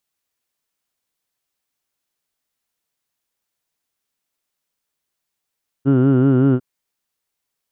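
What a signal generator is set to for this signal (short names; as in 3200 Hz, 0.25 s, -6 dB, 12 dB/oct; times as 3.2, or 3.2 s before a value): formant vowel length 0.75 s, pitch 132 Hz, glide 0 st, F1 320 Hz, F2 1400 Hz, F3 2900 Hz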